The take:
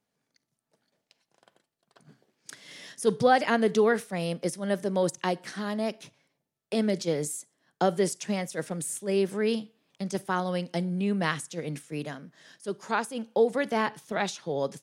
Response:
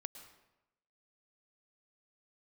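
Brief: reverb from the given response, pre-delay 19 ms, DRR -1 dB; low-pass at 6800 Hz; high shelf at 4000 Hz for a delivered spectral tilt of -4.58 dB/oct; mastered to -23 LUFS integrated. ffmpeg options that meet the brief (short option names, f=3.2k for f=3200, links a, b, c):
-filter_complex "[0:a]lowpass=6.8k,highshelf=f=4k:g=6,asplit=2[a][b];[1:a]atrim=start_sample=2205,adelay=19[c];[b][c]afir=irnorm=-1:irlink=0,volume=4.5dB[d];[a][d]amix=inputs=2:normalize=0,volume=2.5dB"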